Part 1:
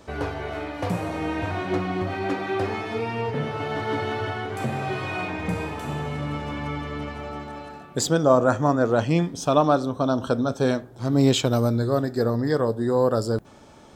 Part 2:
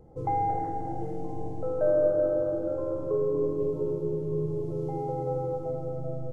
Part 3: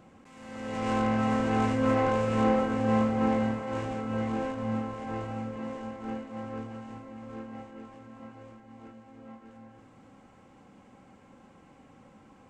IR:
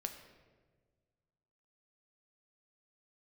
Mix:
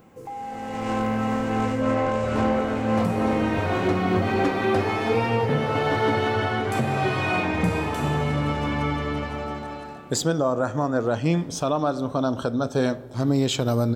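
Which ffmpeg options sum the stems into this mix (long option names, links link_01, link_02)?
-filter_complex "[0:a]dynaudnorm=framelen=960:gausssize=3:maxgain=7dB,adelay=2150,volume=-3.5dB,asplit=2[link_01][link_02];[link_02]volume=-10.5dB[link_03];[1:a]aemphasis=mode=production:type=riaa,alimiter=level_in=4dB:limit=-24dB:level=0:latency=1,volume=-4dB,volume=-1dB[link_04];[2:a]volume=2dB[link_05];[3:a]atrim=start_sample=2205[link_06];[link_03][link_06]afir=irnorm=-1:irlink=0[link_07];[link_01][link_04][link_05][link_07]amix=inputs=4:normalize=0,alimiter=limit=-12dB:level=0:latency=1:release=230"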